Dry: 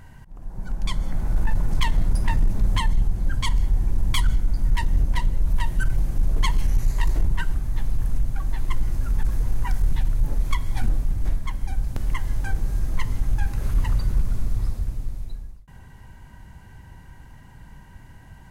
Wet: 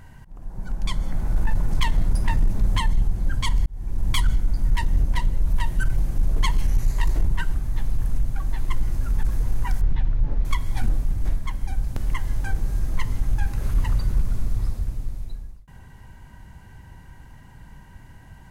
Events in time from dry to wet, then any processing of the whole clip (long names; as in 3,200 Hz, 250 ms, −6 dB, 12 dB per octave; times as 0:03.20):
0:03.66–0:04.10: fade in
0:09.81–0:10.45: high-frequency loss of the air 220 metres